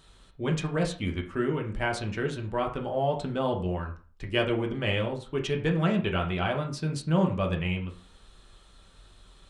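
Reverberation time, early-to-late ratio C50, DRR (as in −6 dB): 0.40 s, 10.5 dB, 1.0 dB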